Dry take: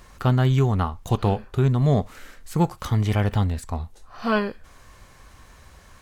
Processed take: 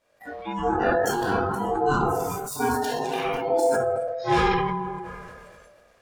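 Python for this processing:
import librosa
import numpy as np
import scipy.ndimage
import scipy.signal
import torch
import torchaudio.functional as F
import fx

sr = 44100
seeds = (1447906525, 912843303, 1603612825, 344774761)

y = fx.tracing_dist(x, sr, depth_ms=0.041)
y = 10.0 ** (-23.0 / 20.0) * np.tanh(y / 10.0 ** (-23.0 / 20.0))
y = fx.high_shelf(y, sr, hz=8100.0, db=9.5, at=(1.19, 2.78))
y = fx.room_shoebox(y, sr, seeds[0], volume_m3=1400.0, walls='mixed', distance_m=4.2)
y = fx.chorus_voices(y, sr, voices=6, hz=0.37, base_ms=24, depth_ms=2.0, mix_pct=25)
y = fx.noise_reduce_blind(y, sr, reduce_db=23)
y = fx.low_shelf(y, sr, hz=110.0, db=-11.5)
y = fx.echo_banded(y, sr, ms=238, feedback_pct=60, hz=880.0, wet_db=-18.5)
y = y * np.sin(2.0 * np.pi * 590.0 * np.arange(len(y)) / sr)
y = fx.sustainer(y, sr, db_per_s=27.0)
y = y * librosa.db_to_amplitude(4.0)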